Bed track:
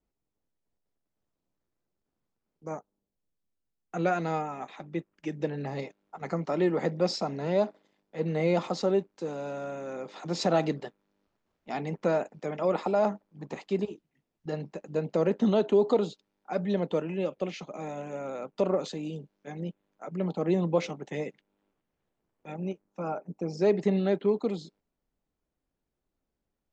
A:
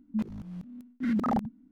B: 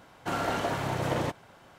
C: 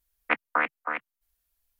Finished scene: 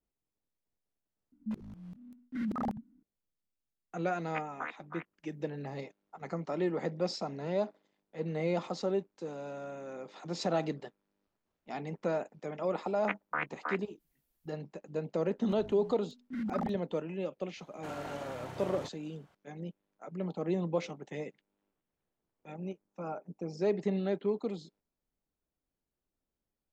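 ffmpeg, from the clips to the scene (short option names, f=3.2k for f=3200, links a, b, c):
-filter_complex "[1:a]asplit=2[a][b];[3:a]asplit=2[c][d];[0:a]volume=-6dB[e];[d]dynaudnorm=f=140:g=3:m=11.5dB[f];[e]asplit=2[g][h];[g]atrim=end=1.324[i];[a]atrim=end=1.71,asetpts=PTS-STARTPTS,volume=-7dB[j];[h]atrim=start=3.026[k];[c]atrim=end=1.79,asetpts=PTS-STARTPTS,volume=-15.5dB,afade=t=in:d=0.004:c=hsin,afade=t=out:st=1.786:d=0.004:c=hsin,adelay=178605S[l];[f]atrim=end=1.79,asetpts=PTS-STARTPTS,volume=-16dB,afade=t=in:d=0.004:c=hsin,afade=t=out:st=1.786:d=0.004:c=hsin,adelay=12780[m];[b]atrim=end=1.71,asetpts=PTS-STARTPTS,volume=-8.5dB,afade=t=in:d=0.004:c=hsin,afade=t=out:st=1.706:d=0.004:c=hsin,adelay=15300[n];[2:a]atrim=end=1.78,asetpts=PTS-STARTPTS,volume=-13.5dB,afade=t=in:d=0.004:c=hsin,afade=t=out:st=1.776:d=0.004:c=hsin,adelay=17570[o];[i][j]acrossfade=d=0.004:c1=hsin:c2=hsin[p];[p][k]acrossfade=d=0.004:c1=hsin:c2=hsin[q];[q][l][m][n][o]amix=inputs=5:normalize=0"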